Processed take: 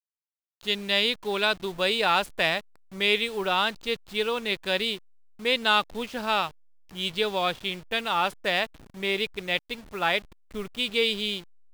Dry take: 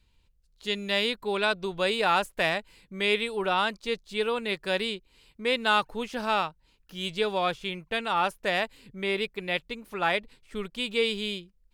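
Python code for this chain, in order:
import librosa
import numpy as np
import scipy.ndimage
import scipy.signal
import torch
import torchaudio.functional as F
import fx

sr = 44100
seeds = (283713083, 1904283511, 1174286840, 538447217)

y = fx.delta_hold(x, sr, step_db=-42.0)
y = fx.dynamic_eq(y, sr, hz=3600.0, q=1.1, threshold_db=-43.0, ratio=4.0, max_db=5)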